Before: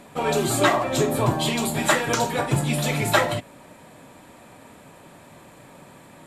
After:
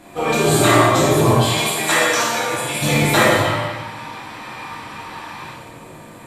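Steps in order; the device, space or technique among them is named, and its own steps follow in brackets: bathroom (reverb RT60 1.0 s, pre-delay 8 ms, DRR 1 dB); 1.33–2.81 HPF 520 Hz -> 1200 Hz 6 dB/oct; 3.45–5.51 spectral gain 770–6200 Hz +11 dB; non-linear reverb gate 0.36 s falling, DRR -5.5 dB; gain -1 dB

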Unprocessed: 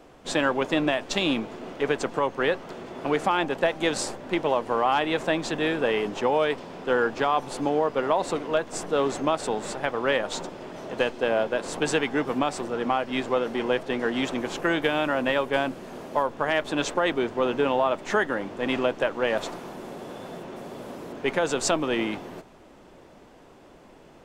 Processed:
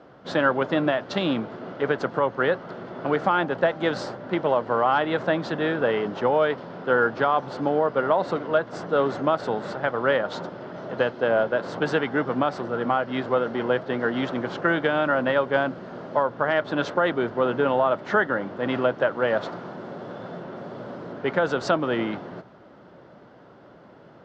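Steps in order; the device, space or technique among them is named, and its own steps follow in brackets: guitar cabinet (speaker cabinet 88–4500 Hz, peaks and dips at 120 Hz +8 dB, 180 Hz +5 dB, 580 Hz +4 dB, 1400 Hz +7 dB, 2500 Hz -8 dB, 3600 Hz -3 dB)

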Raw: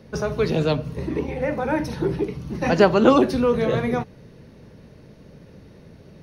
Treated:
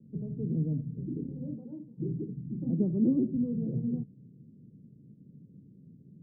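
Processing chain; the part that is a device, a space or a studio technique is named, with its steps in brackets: 1.55–1.97 HPF 330 Hz -> 1200 Hz 6 dB/oct; HPF 240 Hz 12 dB/oct; the neighbour's flat through the wall (LPF 250 Hz 24 dB/oct; bell 130 Hz +7 dB 0.84 oct); gain -1.5 dB

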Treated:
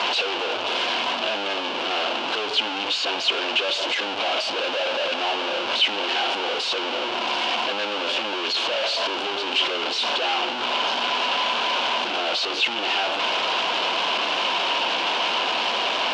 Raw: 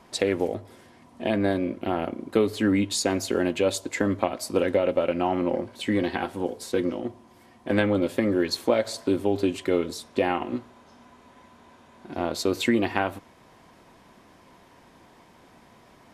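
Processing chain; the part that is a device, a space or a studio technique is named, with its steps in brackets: home computer beeper (infinite clipping; speaker cabinet 670–4400 Hz, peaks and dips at 1200 Hz -3 dB, 1900 Hz -10 dB, 2900 Hz +9 dB); gain +7 dB

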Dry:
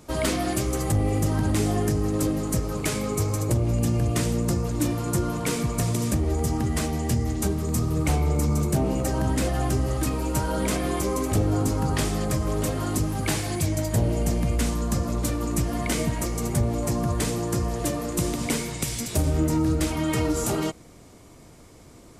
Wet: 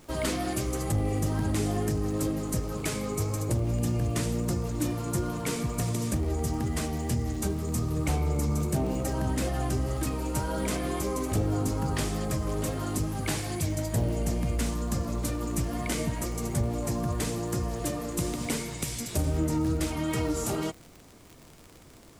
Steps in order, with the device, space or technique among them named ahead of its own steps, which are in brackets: vinyl LP (wow and flutter 18 cents; crackle 59/s -32 dBFS; pink noise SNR 31 dB); gain -4.5 dB

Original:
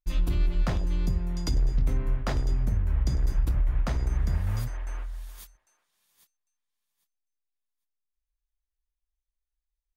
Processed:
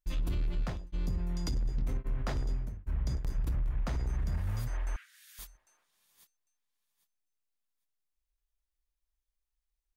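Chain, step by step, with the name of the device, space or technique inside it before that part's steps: clipper into limiter (hard clip -20.5 dBFS, distortion -18 dB; limiter -26.5 dBFS, peak gain reduction 49 dB); 4.96–5.39 steep high-pass 1500 Hz 48 dB/oct

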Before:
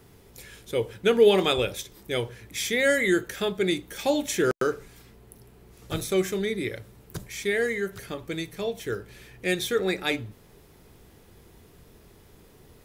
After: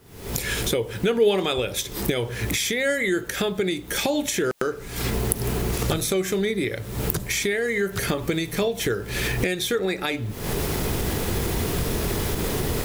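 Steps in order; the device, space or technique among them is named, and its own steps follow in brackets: cheap recorder with automatic gain (white noise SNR 38 dB; recorder AGC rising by 79 dB/s); gain -1.5 dB

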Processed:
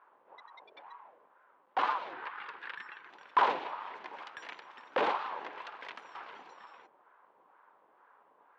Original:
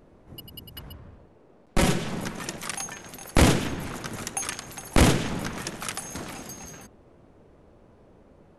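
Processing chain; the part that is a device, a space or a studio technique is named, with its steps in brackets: voice changer toy (ring modulator with a swept carrier 780 Hz, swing 35%, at 2.1 Hz; speaker cabinet 410–3500 Hz, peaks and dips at 660 Hz -4 dB, 980 Hz +6 dB, 1600 Hz +3 dB); 2.13–3.1 fifteen-band EQ 250 Hz -5 dB, 630 Hz -9 dB, 1600 Hz +8 dB, 6300 Hz -10 dB; gain -8 dB

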